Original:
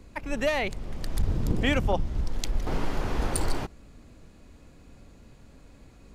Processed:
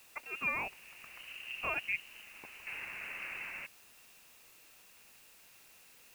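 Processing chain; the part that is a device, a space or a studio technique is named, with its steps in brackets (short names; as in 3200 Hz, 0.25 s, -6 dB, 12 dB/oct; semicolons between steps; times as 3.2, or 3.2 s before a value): scrambled radio voice (BPF 310–3200 Hz; inverted band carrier 3000 Hz; white noise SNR 17 dB); gain -8 dB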